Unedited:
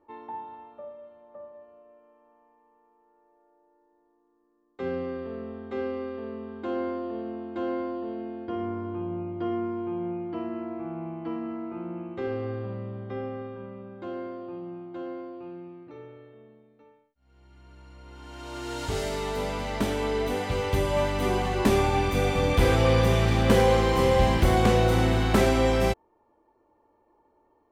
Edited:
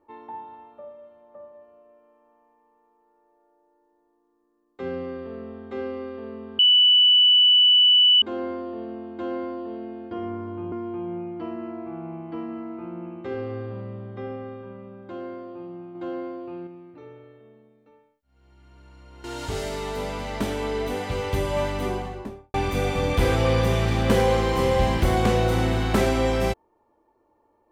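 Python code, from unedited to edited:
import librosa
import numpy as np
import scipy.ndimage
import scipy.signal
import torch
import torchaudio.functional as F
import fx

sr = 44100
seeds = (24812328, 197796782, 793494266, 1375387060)

y = fx.studio_fade_out(x, sr, start_s=21.06, length_s=0.88)
y = fx.edit(y, sr, fx.insert_tone(at_s=6.59, length_s=1.63, hz=2970.0, db=-12.5),
    fx.cut(start_s=9.09, length_s=0.56),
    fx.clip_gain(start_s=14.88, length_s=0.72, db=4.5),
    fx.cut(start_s=18.17, length_s=0.47), tone=tone)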